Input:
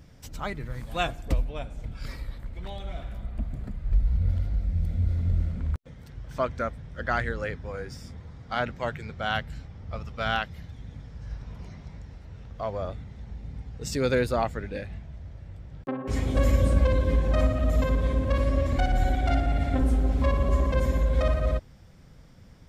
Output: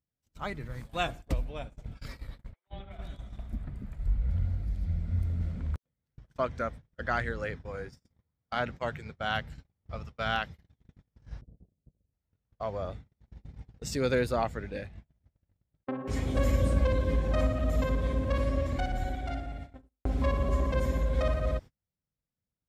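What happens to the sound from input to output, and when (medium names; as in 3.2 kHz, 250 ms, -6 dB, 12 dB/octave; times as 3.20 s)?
2.53–5.41 s: three bands offset in time mids, lows, highs 140/380 ms, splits 480/3700 Hz
11.41–12.13 s: steep low-pass 600 Hz
18.44–20.05 s: fade out
whole clip: high-pass 43 Hz 6 dB/octave; gate -37 dBFS, range -36 dB; trim -3 dB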